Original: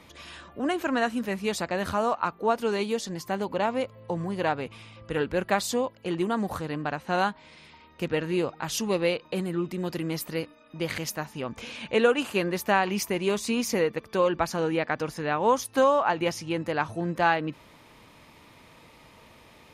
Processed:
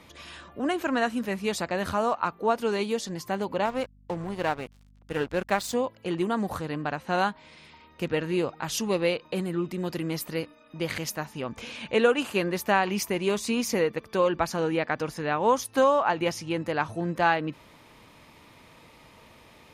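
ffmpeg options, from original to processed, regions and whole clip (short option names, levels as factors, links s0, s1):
-filter_complex "[0:a]asettb=1/sr,asplit=3[s0][s1][s2];[s0]atrim=end=3.654[s3];[s1]atrim=start=3.65:end=5.74,asetpts=PTS-STARTPTS,afade=t=in:d=0.004:c=qsin,afade=t=out:st=2.086:d=0.004:c=qsin,aeval=exprs='sgn(val(0))*max(abs(val(0))-0.0106,0)':c=same,aeval=exprs='val(0)+0.00178*(sin(2*PI*50*n/s)+sin(2*PI*2*50*n/s)/2+sin(2*PI*3*50*n/s)/3+sin(2*PI*4*50*n/s)/4+sin(2*PI*5*50*n/s)/5)':c=same[s4];[s2]atrim=start=5.736[s5];[s3][s4]acrossfade=d=0.004:c1=hsin:c2=qsin[s6];[s6][s5]acrossfade=d=0.004:c1=qsin:c2=hsin"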